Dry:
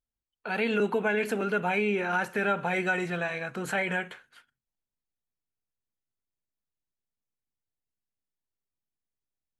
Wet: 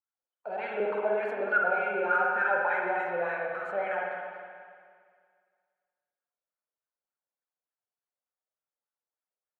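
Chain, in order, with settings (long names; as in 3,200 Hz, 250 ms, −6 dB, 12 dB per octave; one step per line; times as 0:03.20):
LFO wah 3.4 Hz 510–1,500 Hz, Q 5.6
spring reverb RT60 2 s, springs 50/58 ms, chirp 70 ms, DRR −1.5 dB
level +6.5 dB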